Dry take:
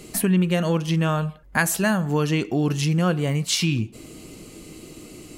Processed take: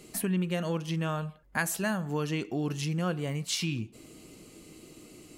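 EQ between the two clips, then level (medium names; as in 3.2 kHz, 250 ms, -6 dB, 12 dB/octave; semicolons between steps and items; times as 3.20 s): bass shelf 94 Hz -5.5 dB; -8.5 dB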